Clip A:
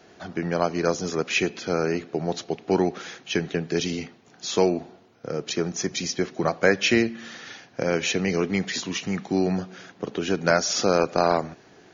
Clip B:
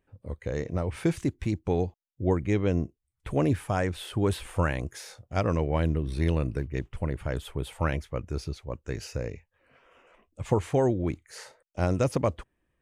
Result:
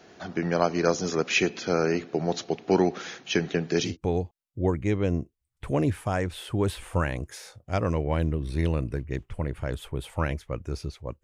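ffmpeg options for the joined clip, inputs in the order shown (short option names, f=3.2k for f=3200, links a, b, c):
-filter_complex "[0:a]apad=whole_dur=11.23,atrim=end=11.23,atrim=end=3.97,asetpts=PTS-STARTPTS[a];[1:a]atrim=start=1.44:end=8.86,asetpts=PTS-STARTPTS[b];[a][b]acrossfade=d=0.16:c1=tri:c2=tri"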